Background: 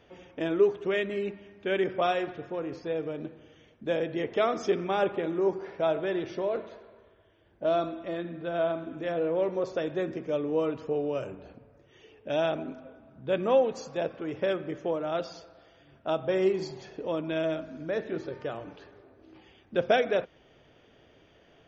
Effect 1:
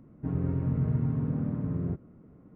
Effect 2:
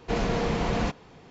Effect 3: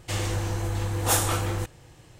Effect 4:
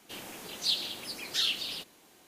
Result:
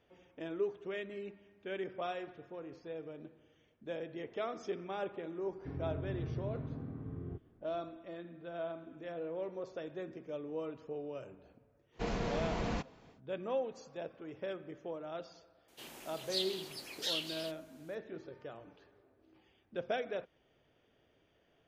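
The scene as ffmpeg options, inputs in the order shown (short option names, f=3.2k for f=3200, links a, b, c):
-filter_complex "[0:a]volume=-12.5dB[a];[1:a]aecho=1:1:2.6:0.54[b];[4:a]afreqshift=35[c];[b]atrim=end=2.55,asetpts=PTS-STARTPTS,volume=-11dB,afade=t=in:d=0.004:c=hsin,afade=t=out:st=2.546:d=0.004:c=hsin,adelay=5420[d];[2:a]atrim=end=1.3,asetpts=PTS-STARTPTS,volume=-9.5dB,afade=t=in:d=0.1,afade=t=out:st=1.2:d=0.1,adelay=11910[e];[c]atrim=end=2.27,asetpts=PTS-STARTPTS,volume=-7.5dB,afade=t=in:d=0.004:c=hsin,afade=t=out:st=2.266:d=0.004:c=hsin,adelay=15680[f];[a][d][e][f]amix=inputs=4:normalize=0"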